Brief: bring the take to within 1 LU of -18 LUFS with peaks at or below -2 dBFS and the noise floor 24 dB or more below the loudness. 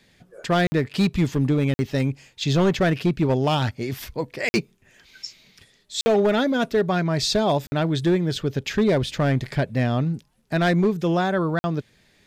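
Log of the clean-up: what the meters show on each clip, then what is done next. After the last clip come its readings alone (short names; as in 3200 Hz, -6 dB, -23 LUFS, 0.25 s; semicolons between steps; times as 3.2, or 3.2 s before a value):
clipped 1.2%; flat tops at -13.5 dBFS; dropouts 6; longest dropout 50 ms; loudness -22.5 LUFS; peak -13.5 dBFS; loudness target -18.0 LUFS
-> clip repair -13.5 dBFS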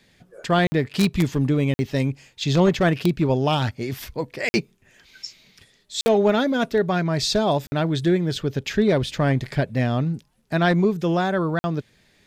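clipped 0.0%; dropouts 6; longest dropout 50 ms
-> interpolate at 0.67/1.74/4.49/6.01/7.67/11.59, 50 ms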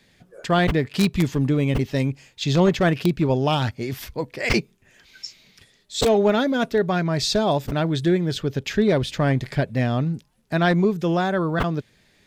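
dropouts 0; loudness -22.0 LUFS; peak -4.5 dBFS; loudness target -18.0 LUFS
-> gain +4 dB; limiter -2 dBFS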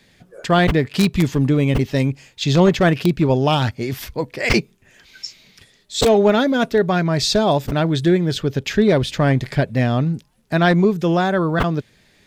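loudness -18.0 LUFS; peak -2.0 dBFS; noise floor -56 dBFS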